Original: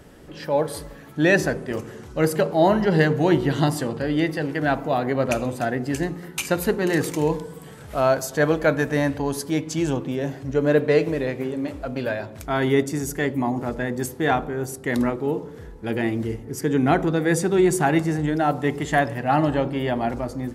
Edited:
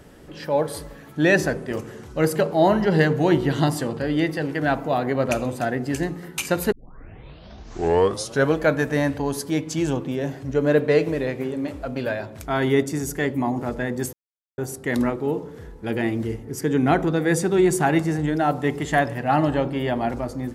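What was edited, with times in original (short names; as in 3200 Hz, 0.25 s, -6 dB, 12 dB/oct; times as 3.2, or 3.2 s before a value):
6.72 tape start 1.84 s
14.13–14.58 mute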